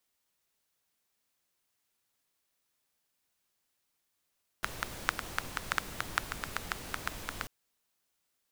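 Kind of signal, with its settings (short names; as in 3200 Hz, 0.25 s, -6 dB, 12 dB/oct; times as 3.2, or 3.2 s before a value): rain from filtered ticks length 2.84 s, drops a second 6.2, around 1400 Hz, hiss -3.5 dB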